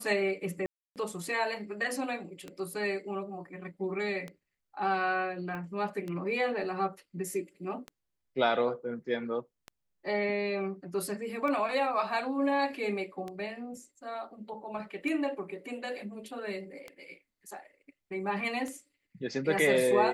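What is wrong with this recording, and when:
tick 33 1/3 rpm -25 dBFS
0.66–0.96 gap 0.298 s
5.55 pop -28 dBFS

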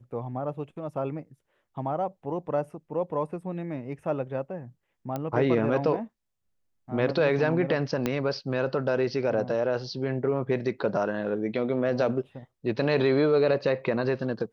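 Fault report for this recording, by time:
5.16 pop -18 dBFS
8.06 pop -12 dBFS

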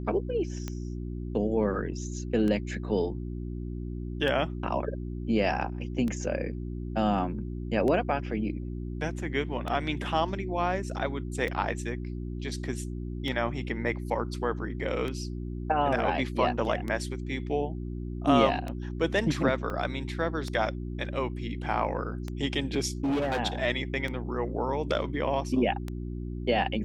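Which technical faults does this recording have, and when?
hum 60 Hz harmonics 6 -35 dBFS
tick 33 1/3 rpm -20 dBFS
19.7 gap 2.5 ms
23.04–23.4 clipped -24.5 dBFS

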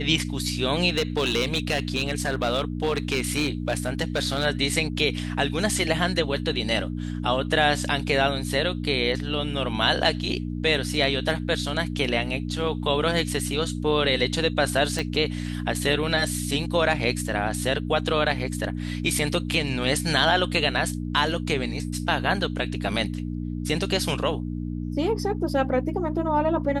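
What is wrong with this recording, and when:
hum 60 Hz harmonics 5 -30 dBFS
0.89–4.46 clipped -18 dBFS
14.99 pop
18.31 gap 2.8 ms

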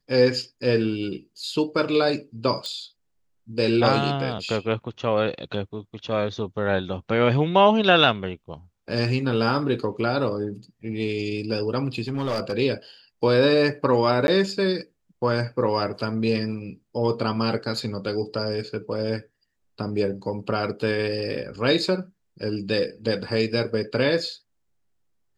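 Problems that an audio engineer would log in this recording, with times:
2.66 pop -19 dBFS
12.08–12.53 clipped -21.5 dBFS
14.27–14.28 gap 11 ms

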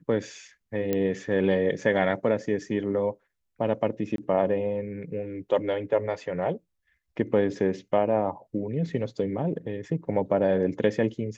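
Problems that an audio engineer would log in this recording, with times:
0.93 pop -13 dBFS
4.16–4.18 gap 22 ms

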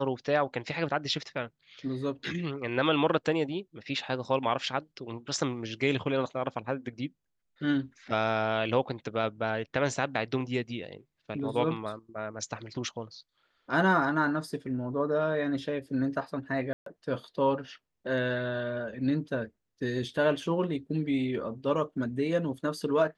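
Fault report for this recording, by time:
16.73–16.86 gap 0.133 s

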